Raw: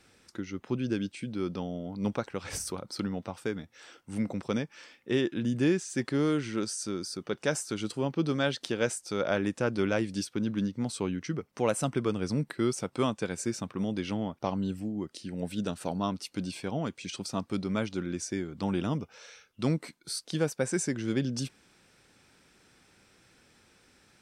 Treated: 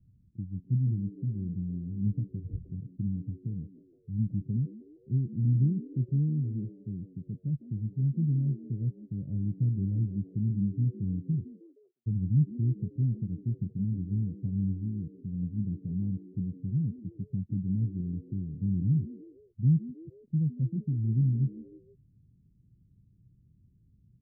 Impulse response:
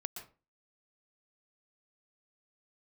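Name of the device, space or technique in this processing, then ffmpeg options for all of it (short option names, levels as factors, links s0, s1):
the neighbour's flat through the wall: -filter_complex "[0:a]lowpass=f=160:w=0.5412,lowpass=f=160:w=1.3066,equalizer=f=120:t=o:w=0.77:g=4.5,asplit=3[s0][s1][s2];[s0]afade=t=out:st=11.53:d=0.02[s3];[s1]highpass=f=1200:w=0.5412,highpass=f=1200:w=1.3066,afade=t=in:st=11.53:d=0.02,afade=t=out:st=12.06:d=0.02[s4];[s2]afade=t=in:st=12.06:d=0.02[s5];[s3][s4][s5]amix=inputs=3:normalize=0,asplit=4[s6][s7][s8][s9];[s7]adelay=156,afreqshift=88,volume=0.119[s10];[s8]adelay=312,afreqshift=176,volume=0.0501[s11];[s9]adelay=468,afreqshift=264,volume=0.0209[s12];[s6][s10][s11][s12]amix=inputs=4:normalize=0,volume=2.37"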